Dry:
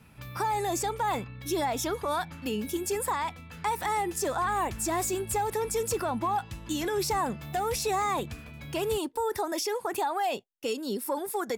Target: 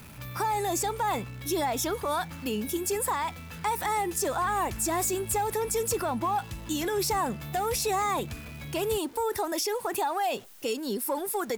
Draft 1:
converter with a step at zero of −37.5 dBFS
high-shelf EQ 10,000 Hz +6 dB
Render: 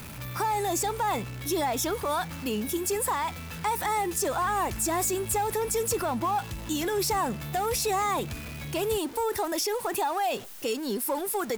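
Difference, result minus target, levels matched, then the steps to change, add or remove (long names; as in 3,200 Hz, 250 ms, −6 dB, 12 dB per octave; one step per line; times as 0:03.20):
converter with a step at zero: distortion +7 dB
change: converter with a step at zero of −45 dBFS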